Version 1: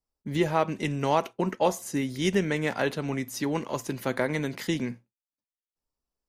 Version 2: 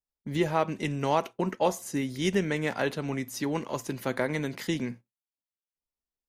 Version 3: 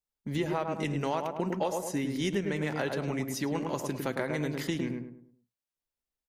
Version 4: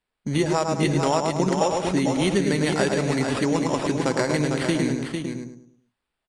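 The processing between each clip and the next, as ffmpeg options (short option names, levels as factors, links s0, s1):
-af "agate=range=0.398:threshold=0.00708:ratio=16:detection=peak,volume=0.841"
-filter_complex "[0:a]asplit=2[s0][s1];[s1]adelay=105,lowpass=f=1200:p=1,volume=0.631,asplit=2[s2][s3];[s3]adelay=105,lowpass=f=1200:p=1,volume=0.39,asplit=2[s4][s5];[s5]adelay=105,lowpass=f=1200:p=1,volume=0.39,asplit=2[s6][s7];[s7]adelay=105,lowpass=f=1200:p=1,volume=0.39,asplit=2[s8][s9];[s9]adelay=105,lowpass=f=1200:p=1,volume=0.39[s10];[s0][s2][s4][s6][s8][s10]amix=inputs=6:normalize=0,acompressor=threshold=0.0447:ratio=4"
-af "acrusher=samples=7:mix=1:aa=0.000001,aecho=1:1:451:0.501,aresample=22050,aresample=44100,volume=2.66"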